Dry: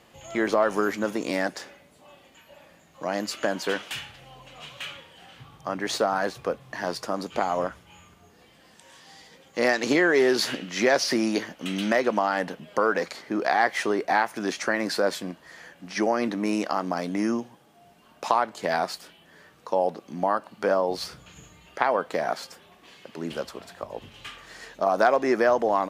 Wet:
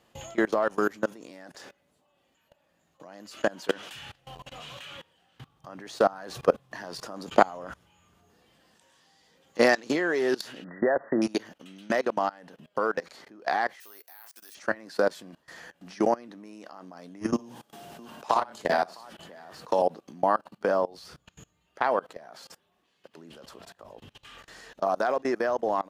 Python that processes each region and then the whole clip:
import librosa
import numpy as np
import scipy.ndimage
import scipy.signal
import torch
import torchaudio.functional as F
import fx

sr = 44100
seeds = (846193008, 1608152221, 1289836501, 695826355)

y = fx.chain(x, sr, fx.brickwall_lowpass(high_hz=2000.0),
    fx.peak_eq(hz=590.0, db=4.5, octaves=0.83), at=(10.64, 11.22))
y = fx.chain(y, sr, fx.resample_bad(factor=3, down='none', up='hold'),
    fx.differentiator(),
    fx.doubler(ms=28.0, db=-14.0), at=(13.8, 14.55))
y = fx.chain(y, sr, fx.echo_multitap(ms=(53, 58, 84, 656), db=(-18.0, -6.0, -11.5, -16.0)),
    fx.band_squash(depth_pct=70), at=(17.33, 19.82))
y = fx.level_steps(y, sr, step_db=24)
y = fx.peak_eq(y, sr, hz=2200.0, db=-4.5, octaves=0.26)
y = fx.rider(y, sr, range_db=10, speed_s=0.5)
y = y * librosa.db_to_amplitude(2.0)